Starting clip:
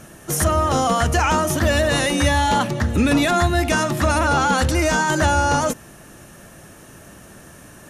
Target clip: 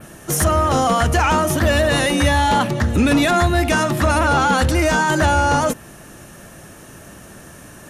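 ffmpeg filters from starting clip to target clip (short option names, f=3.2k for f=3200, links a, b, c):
-af "adynamicequalizer=threshold=0.0126:dfrequency=6300:dqfactor=1.4:tfrequency=6300:tqfactor=1.4:attack=5:release=100:ratio=0.375:range=2:mode=cutabove:tftype=bell,acontrast=78,volume=-4dB"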